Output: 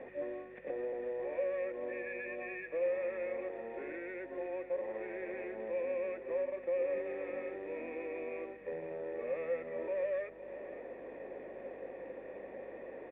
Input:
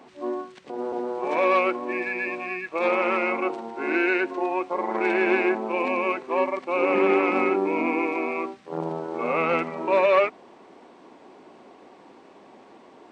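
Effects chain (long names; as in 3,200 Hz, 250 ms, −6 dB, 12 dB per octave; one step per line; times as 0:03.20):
phase distortion by the signal itself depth 0.14 ms
low-pass filter 3,200 Hz
in parallel at +1 dB: brickwall limiter −21.5 dBFS, peak gain reduction 11 dB
on the sum: downward compressor 16 to 1, threshold −32 dBFS, peak gain reduction 19.5 dB
soft clipping −31.5 dBFS, distortion −15 dB
hum with harmonics 50 Hz, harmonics 4, −58 dBFS −1 dB per octave
log-companded quantiser 4 bits
formant resonators in series e
on a send: single-tap delay 516 ms −13 dB
on the sum: level +7.5 dB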